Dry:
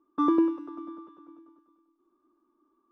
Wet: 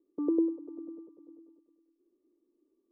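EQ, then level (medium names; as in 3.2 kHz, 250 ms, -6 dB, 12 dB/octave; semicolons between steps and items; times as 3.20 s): dynamic bell 210 Hz, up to -7 dB, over -41 dBFS, Q 1.5; four-pole ladder low-pass 530 Hz, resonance 65%; +4.5 dB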